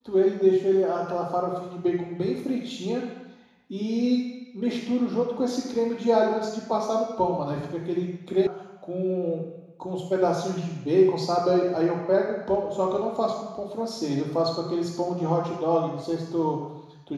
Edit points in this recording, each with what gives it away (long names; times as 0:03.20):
0:08.47: cut off before it has died away